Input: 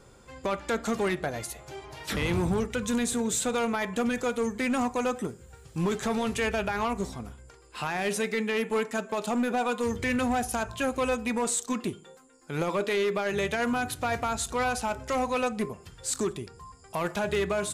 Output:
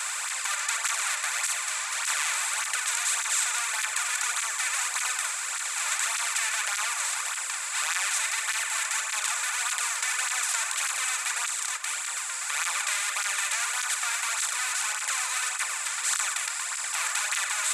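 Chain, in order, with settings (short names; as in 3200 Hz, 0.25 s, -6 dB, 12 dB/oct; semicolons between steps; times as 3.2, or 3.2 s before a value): per-bin compression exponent 0.2; HPF 1100 Hz 24 dB/oct; bell 6200 Hz +7.5 dB 2 oct; 11.47–11.91 level quantiser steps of 11 dB; 14.35–14.97 transient shaper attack -8 dB, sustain -2 dB; reverb RT60 0.40 s, pre-delay 3 ms, DRR 10 dB; tape flanging out of phase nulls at 1.7 Hz, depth 2.8 ms; gain -6 dB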